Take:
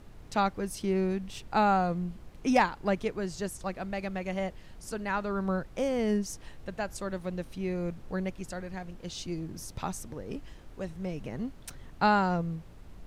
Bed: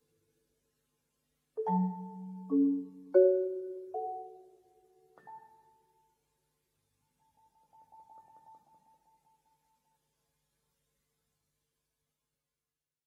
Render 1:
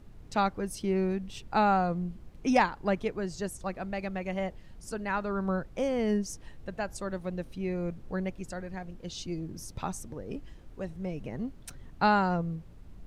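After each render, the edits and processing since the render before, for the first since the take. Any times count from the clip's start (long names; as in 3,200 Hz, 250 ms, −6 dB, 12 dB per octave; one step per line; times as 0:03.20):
broadband denoise 6 dB, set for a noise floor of −50 dBFS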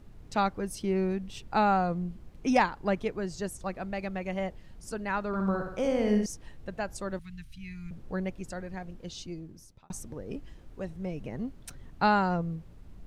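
0:05.27–0:06.26: flutter between parallel walls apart 10.6 metres, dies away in 0.69 s
0:07.19–0:07.91: Chebyshev band-stop filter 120–2,200 Hz
0:08.96–0:09.90: fade out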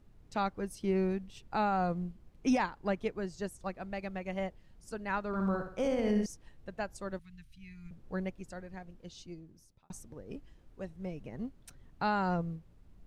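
brickwall limiter −19.5 dBFS, peak gain reduction 8.5 dB
expander for the loud parts 1.5 to 1, over −43 dBFS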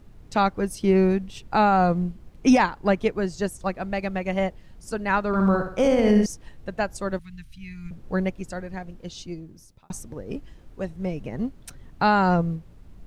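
level +11.5 dB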